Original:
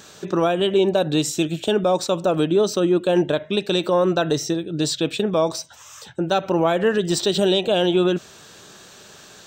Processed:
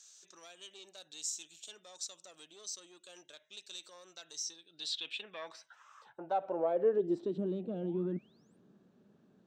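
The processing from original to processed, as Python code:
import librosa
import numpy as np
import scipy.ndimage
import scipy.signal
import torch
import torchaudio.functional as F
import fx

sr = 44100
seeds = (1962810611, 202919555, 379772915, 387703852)

y = fx.diode_clip(x, sr, knee_db=-10.5)
y = fx.spec_paint(y, sr, seeds[0], shape='rise', start_s=7.73, length_s=0.84, low_hz=420.0, high_hz=9400.0, level_db=-35.0)
y = fx.filter_sweep_bandpass(y, sr, from_hz=6500.0, to_hz=220.0, start_s=4.37, end_s=7.53, q=2.6)
y = F.gain(torch.from_numpy(y), -7.0).numpy()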